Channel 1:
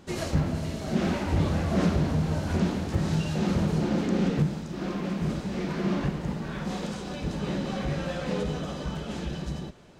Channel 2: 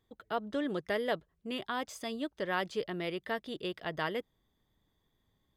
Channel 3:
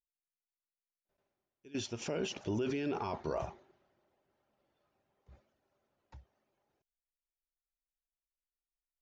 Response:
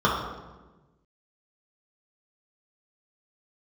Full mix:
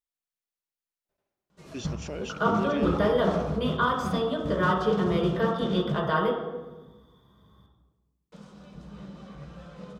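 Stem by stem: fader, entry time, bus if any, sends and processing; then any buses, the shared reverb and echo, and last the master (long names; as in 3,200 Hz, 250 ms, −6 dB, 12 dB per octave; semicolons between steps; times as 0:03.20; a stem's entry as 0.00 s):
−2.0 dB, 1.50 s, muted 0:06.14–0:08.32, send −19 dB, noise gate −24 dBFS, range −17 dB; downward compressor, threshold −30 dBFS, peak gain reduction 10.5 dB
+1.5 dB, 2.10 s, send −3.5 dB, downward compressor 1.5 to 1, threshold −53 dBFS, peak gain reduction 9.5 dB
0.0 dB, 0.00 s, no send, no processing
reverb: on, RT60 1.2 s, pre-delay 3 ms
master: no processing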